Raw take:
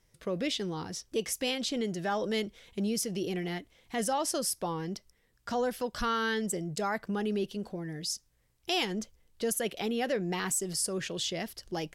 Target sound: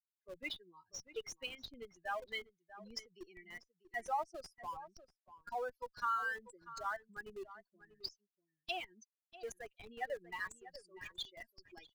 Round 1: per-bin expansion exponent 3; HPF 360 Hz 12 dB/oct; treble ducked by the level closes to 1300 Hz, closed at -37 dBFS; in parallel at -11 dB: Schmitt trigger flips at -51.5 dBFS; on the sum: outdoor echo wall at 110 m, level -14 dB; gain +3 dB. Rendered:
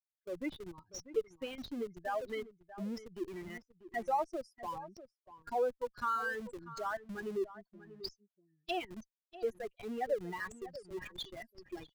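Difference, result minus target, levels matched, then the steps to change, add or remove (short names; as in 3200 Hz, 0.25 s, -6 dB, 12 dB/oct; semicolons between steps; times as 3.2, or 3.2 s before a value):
500 Hz band +5.5 dB
change: HPF 920 Hz 12 dB/oct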